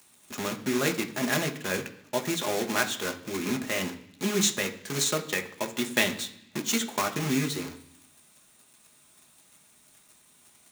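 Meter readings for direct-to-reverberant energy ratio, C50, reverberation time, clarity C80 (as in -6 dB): 4.0 dB, 13.5 dB, 0.65 s, 16.5 dB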